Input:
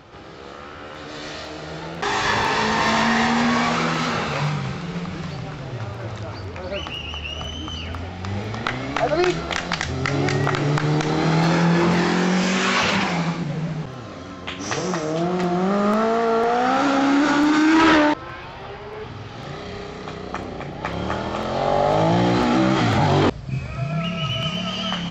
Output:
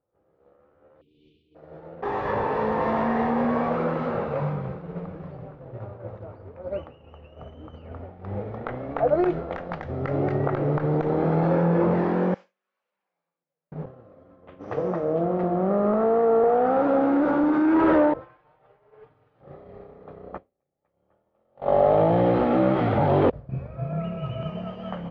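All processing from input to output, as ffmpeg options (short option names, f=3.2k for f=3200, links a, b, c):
-filter_complex "[0:a]asettb=1/sr,asplit=3[a][b][c];[a]atrim=end=1.014[d];[b]atrim=start=1.01:end=1.55,asetpts=PTS-STARTPTS,afade=t=in:d=0.004:c=qsin,afade=t=out:st=0.536:d=0.004:c=qsin,asuperstop=centerf=1000:order=20:qfactor=0.52,equalizer=f=3.2k:t=o:w=0.66:g=14.5[e];[c]atrim=start=1.546[f];[d][e]acrossfade=d=0.004:c1=hsin:c2=qsin[g];[g][f]acrossfade=d=0.004:c1=qsin:c2=hsin,asettb=1/sr,asplit=3[h][i][j];[h]atrim=end=12.344[k];[i]atrim=start=12.34:end=13.72,asetpts=PTS-STARTPTS,afade=t=in:d=0.004:c=qsin,afade=t=out:st=1.376:d=0.004:c=qsin,bandpass=f=7k:t=q:w=1.1,acompressor=threshold=-34dB:ratio=2.5:attack=3.2:release=140:knee=1:detection=peak[l];[j]atrim=start=13.716[m];[k][l]acrossfade=d=0.004:c1=hsin:c2=qsin[n];[n][m]acrossfade=d=0.004:c1=qsin:c2=hsin,asettb=1/sr,asplit=3[o][p][q];[o]atrim=end=18.214[r];[p]atrim=start=18.21:end=19.41,asetpts=PTS-STARTPTS,afade=t=in:d=0.004:c=qsin,afade=t=out:st=1.196:d=0.004:c=qsin,tiltshelf=f=1.1k:g=-6.5,aecho=1:1:6.6:0.61,atrim=end_sample=52920[s];[q]atrim=start=19.406[t];[r][s]acrossfade=d=0.004:c1=hsin:c2=qsin[u];[u][t]acrossfade=d=0.004:c1=qsin:c2=hsin,asettb=1/sr,asplit=3[v][w][x];[v]atrim=end=20.384[y];[w]atrim=start=20.38:end=23.33,asetpts=PTS-STARTPTS,afade=t=in:d=0.004:c=qsin,afade=t=out:st=2.946:d=0.004:c=qsin,agate=range=-16dB:threshold=-21dB:ratio=16:release=100:detection=peak,equalizer=f=3.1k:w=0.88:g=8.5[z];[x]atrim=start=23.326[aa];[y][z]acrossfade=d=0.004:c1=hsin:c2=qsin[ab];[ab][aa]acrossfade=d=0.004:c1=qsin:c2=hsin,lowpass=1.1k,agate=range=-33dB:threshold=-25dB:ratio=3:detection=peak,equalizer=f=520:w=2.7:g=10,volume=-4.5dB"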